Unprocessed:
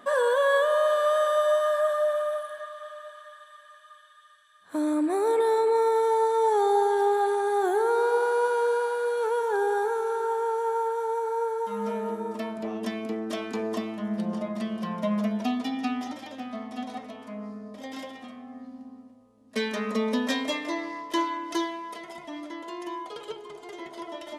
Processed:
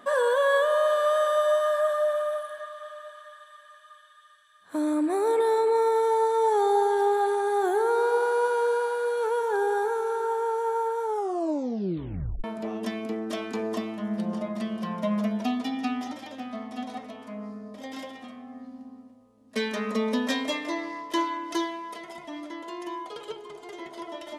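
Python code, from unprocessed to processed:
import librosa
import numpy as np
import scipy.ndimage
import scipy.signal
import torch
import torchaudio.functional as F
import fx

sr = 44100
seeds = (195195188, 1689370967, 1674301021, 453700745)

y = fx.edit(x, sr, fx.tape_stop(start_s=11.05, length_s=1.39), tone=tone)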